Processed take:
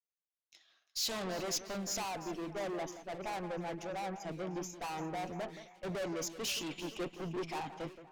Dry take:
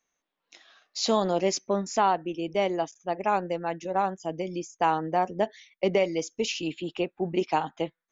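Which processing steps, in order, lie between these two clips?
tube stage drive 37 dB, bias 0.45; echo with dull and thin repeats by turns 0.174 s, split 2200 Hz, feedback 72%, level -9 dB; three-band expander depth 70%

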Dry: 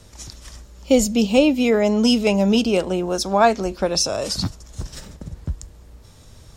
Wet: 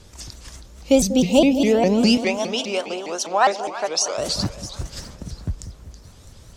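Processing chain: 1.26–1.83 spectral gain 1000–2500 Hz -7 dB; 2.17–4.18 BPF 580–7900 Hz; on a send: split-band echo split 860 Hz, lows 0.191 s, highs 0.329 s, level -12.5 dB; on the sum: shaped vibrato saw up 4.9 Hz, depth 250 cents

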